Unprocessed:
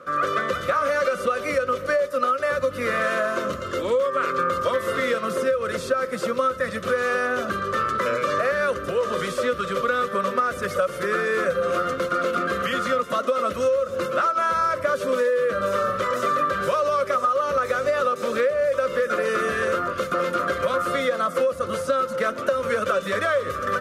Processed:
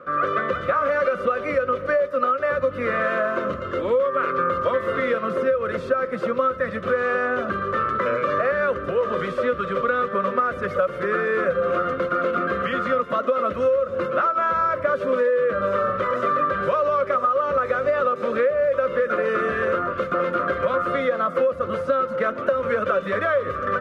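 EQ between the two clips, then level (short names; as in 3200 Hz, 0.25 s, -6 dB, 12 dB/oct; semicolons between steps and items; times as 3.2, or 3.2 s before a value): tone controls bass 0 dB, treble -15 dB; high shelf 4600 Hz -8.5 dB; +1.5 dB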